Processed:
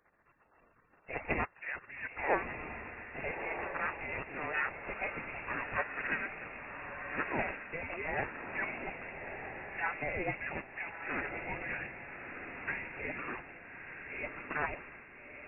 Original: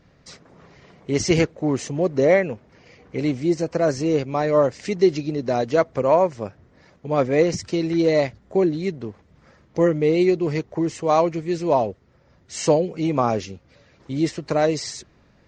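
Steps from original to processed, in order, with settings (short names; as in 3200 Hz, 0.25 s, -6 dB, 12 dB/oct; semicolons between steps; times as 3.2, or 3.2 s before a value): spectral gate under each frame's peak -20 dB weak; inverted band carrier 2700 Hz; diffused feedback echo 1.294 s, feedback 44%, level -6 dB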